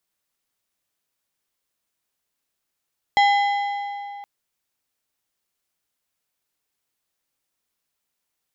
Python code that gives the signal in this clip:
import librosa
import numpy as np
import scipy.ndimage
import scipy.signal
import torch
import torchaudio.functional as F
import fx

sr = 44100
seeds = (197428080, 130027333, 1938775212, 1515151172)

y = fx.strike_metal(sr, length_s=1.07, level_db=-13, body='plate', hz=810.0, decay_s=2.92, tilt_db=6.0, modes=6)